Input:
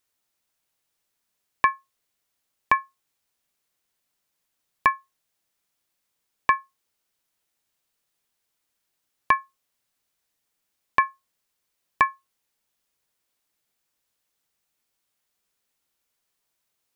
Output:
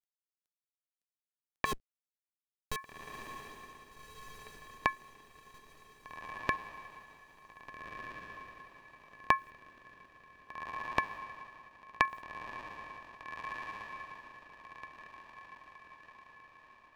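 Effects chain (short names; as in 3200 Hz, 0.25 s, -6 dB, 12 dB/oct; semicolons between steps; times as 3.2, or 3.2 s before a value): 1.65–2.76 Schmitt trigger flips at -34.5 dBFS; bit-crush 11-bit; compressor 4:1, threshold -23 dBFS, peak gain reduction 8.5 dB; rotary speaker horn 6.3 Hz, later 0.65 Hz, at 2.13; on a send: diffused feedback echo 1.626 s, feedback 44%, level -6.5 dB; on the sum: gain +1 dB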